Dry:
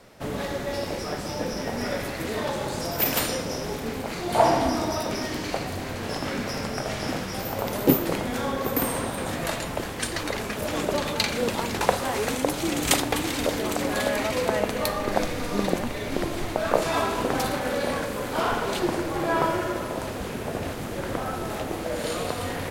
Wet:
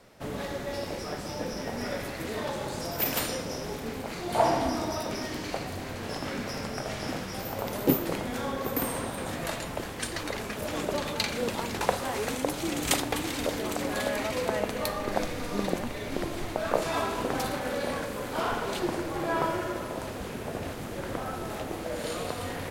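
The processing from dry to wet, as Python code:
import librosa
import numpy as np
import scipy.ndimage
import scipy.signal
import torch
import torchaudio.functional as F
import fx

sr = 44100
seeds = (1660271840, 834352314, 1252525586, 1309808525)

y = x * 10.0 ** (-4.5 / 20.0)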